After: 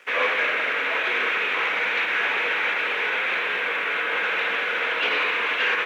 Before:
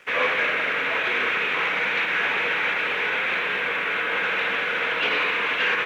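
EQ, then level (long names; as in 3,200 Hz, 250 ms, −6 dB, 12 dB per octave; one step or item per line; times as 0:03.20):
high-pass filter 280 Hz 12 dB per octave
0.0 dB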